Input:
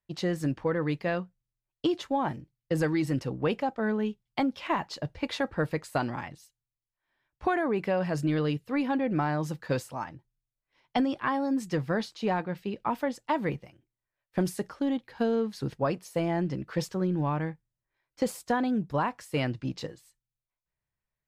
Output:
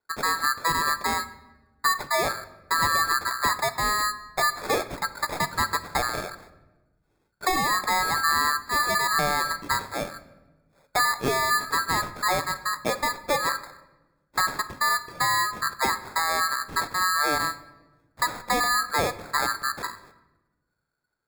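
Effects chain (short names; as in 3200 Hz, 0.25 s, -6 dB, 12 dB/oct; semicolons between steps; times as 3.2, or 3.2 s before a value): four-band scrambler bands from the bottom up 2143; in parallel at -2 dB: limiter -24 dBFS, peak gain reduction 10 dB; on the sum: sample-and-hold 15×; shoebox room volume 640 m³, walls mixed, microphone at 0.35 m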